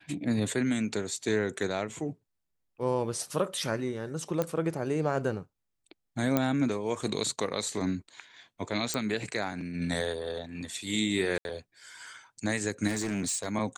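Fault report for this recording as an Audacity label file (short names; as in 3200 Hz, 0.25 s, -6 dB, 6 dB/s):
4.420000	4.420000	pop -15 dBFS
6.370000	6.370000	pop -11 dBFS
8.940000	8.940000	pop
11.380000	11.450000	gap 71 ms
12.870000	13.460000	clipped -27 dBFS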